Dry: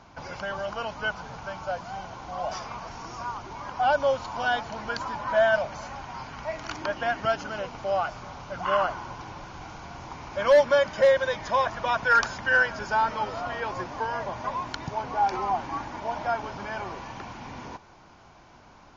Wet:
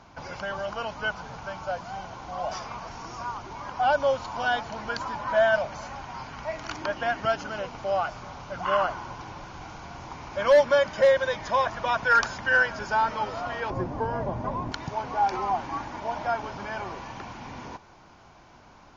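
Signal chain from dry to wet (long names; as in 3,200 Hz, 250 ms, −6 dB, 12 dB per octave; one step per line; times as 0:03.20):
0:13.70–0:14.72: tilt shelving filter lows +10 dB, about 810 Hz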